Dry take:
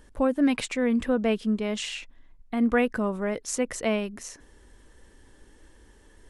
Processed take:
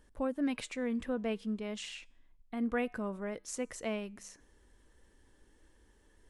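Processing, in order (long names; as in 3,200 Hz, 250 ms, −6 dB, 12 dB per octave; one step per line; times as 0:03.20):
tuned comb filter 66 Hz, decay 0.65 s, harmonics odd, mix 30%
level −7.5 dB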